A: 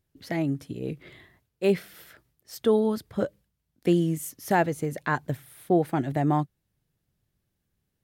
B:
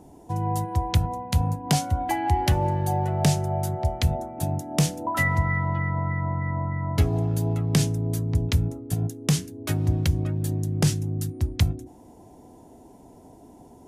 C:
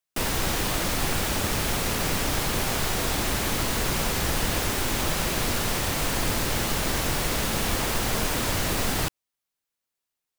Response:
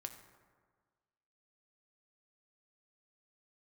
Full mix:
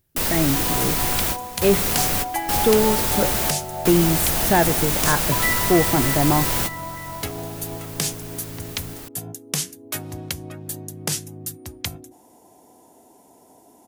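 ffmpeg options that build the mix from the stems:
-filter_complex "[0:a]volume=0dB,asplit=3[a][b][c];[b]volume=-3.5dB[d];[1:a]highpass=f=630:p=1,adelay=250,volume=-1dB[e];[2:a]volume=-2.5dB[f];[c]apad=whole_len=457937[g];[f][g]sidechaingate=range=-17dB:threshold=-57dB:ratio=16:detection=peak[h];[3:a]atrim=start_sample=2205[i];[d][i]afir=irnorm=-1:irlink=0[j];[a][e][h][j]amix=inputs=4:normalize=0,highshelf=f=9.6k:g=11.5,aeval=exprs='0.596*(cos(1*acos(clip(val(0)/0.596,-1,1)))-cos(1*PI/2))+0.0531*(cos(5*acos(clip(val(0)/0.596,-1,1)))-cos(5*PI/2))':c=same"

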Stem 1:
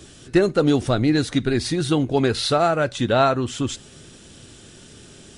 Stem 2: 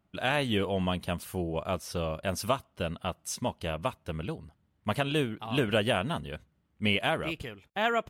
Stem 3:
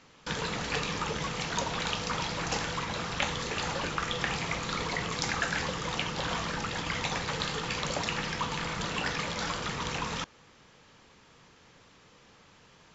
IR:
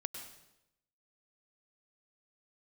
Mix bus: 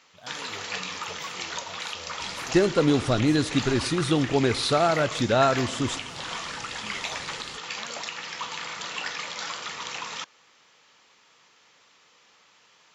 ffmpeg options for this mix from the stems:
-filter_complex "[0:a]adelay=2200,volume=-5dB,asplit=2[a][b];[b]volume=-10.5dB[c];[1:a]highshelf=f=8.3k:g=9.5,asplit=2[d][e];[e]afreqshift=2[f];[d][f]amix=inputs=2:normalize=1,volume=-14.5dB[g];[2:a]highpass=f=1.2k:p=1,bandreject=f=1.6k:w=19,alimiter=limit=-20dB:level=0:latency=1:release=366,volume=2.5dB[h];[3:a]atrim=start_sample=2205[i];[c][i]afir=irnorm=-1:irlink=0[j];[a][g][h][j]amix=inputs=4:normalize=0"

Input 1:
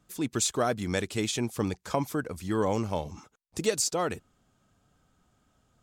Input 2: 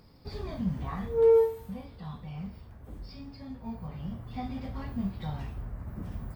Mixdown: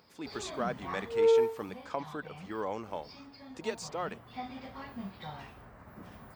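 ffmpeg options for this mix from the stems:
-filter_complex "[0:a]aemphasis=mode=reproduction:type=75kf,volume=-2dB[a];[1:a]volume=3dB[b];[a][b]amix=inputs=2:normalize=0,highpass=f=820:p=1,equalizer=f=13k:w=0.39:g=-8"

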